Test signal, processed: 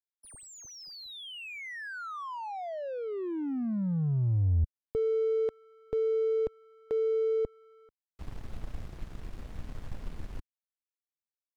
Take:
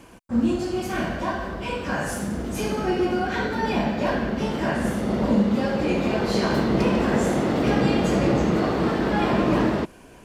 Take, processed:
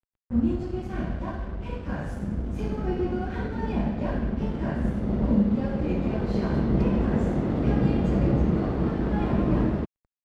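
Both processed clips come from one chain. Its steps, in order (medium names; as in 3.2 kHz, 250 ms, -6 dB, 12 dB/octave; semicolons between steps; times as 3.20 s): crossover distortion -37.5 dBFS; RIAA curve playback; trim -8.5 dB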